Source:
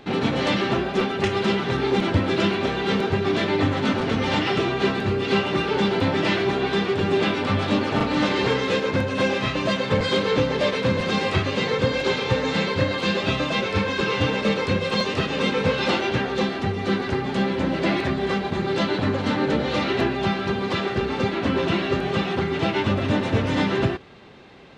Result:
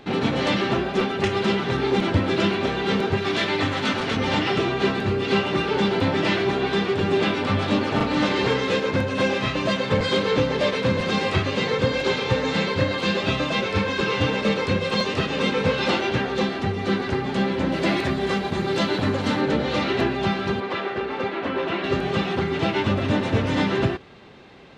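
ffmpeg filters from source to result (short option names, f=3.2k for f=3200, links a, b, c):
-filter_complex "[0:a]asettb=1/sr,asplit=3[a][b][c];[a]atrim=end=3.174[d];[b]atrim=start=3.17:end=4.17,asetpts=PTS-STARTPTS,afade=t=in:d=0.004:c=qsin,afade=t=out:st=0.996:d=0.004:c=qsin,tiltshelf=f=920:g=-4.5[e];[c]atrim=start=4.166[f];[d][e]acrossfade=d=0.004:c1=hsin:c2=qsin[g];[g][f]acrossfade=d=0.004:c1=qsin:c2=hsin,asettb=1/sr,asplit=3[h][i][j];[h]atrim=end=17.724[k];[i]atrim=start=17.72:end=19.41,asetpts=PTS-STARTPTS,afade=t=in:d=0.004:c=qsin,afade=t=out:st=1.686:d=0.004:c=qsin,highshelf=f=7.8k:g=11[l];[j]atrim=start=19.406[m];[k][l]acrossfade=d=0.004:c1=hsin:c2=qsin[n];[n][m]acrossfade=d=0.004:c1=qsin:c2=hsin,asettb=1/sr,asplit=3[o][p][q];[o]atrim=end=20.604[r];[p]atrim=start=20.6:end=21.84,asetpts=PTS-STARTPTS,afade=t=in:d=0.004:c=qsin,afade=t=out:st=1.236:d=0.004:c=qsin,bass=f=250:g=-13,treble=f=4k:g=-13[s];[q]atrim=start=21.836[t];[r][s]acrossfade=d=0.004:c1=hsin:c2=qsin[u];[u][t]acrossfade=d=0.004:c1=qsin:c2=hsin"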